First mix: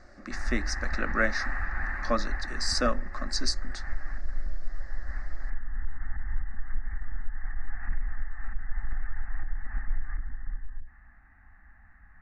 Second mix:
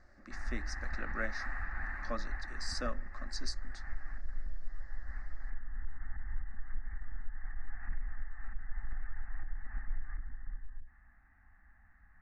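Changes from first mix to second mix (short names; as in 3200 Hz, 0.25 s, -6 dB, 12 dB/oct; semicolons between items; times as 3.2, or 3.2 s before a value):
speech -12.0 dB; background -7.5 dB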